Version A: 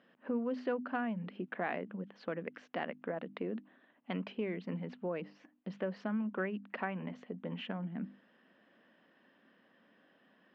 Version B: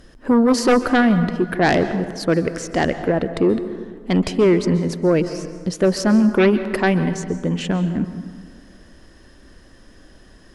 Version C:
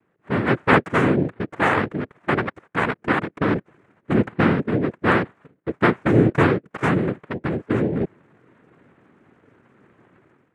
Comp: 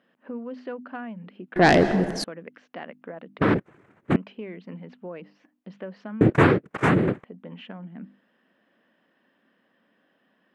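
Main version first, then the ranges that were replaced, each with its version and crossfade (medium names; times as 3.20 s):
A
1.56–2.24 s: from B
3.39–4.16 s: from C
6.21–7.24 s: from C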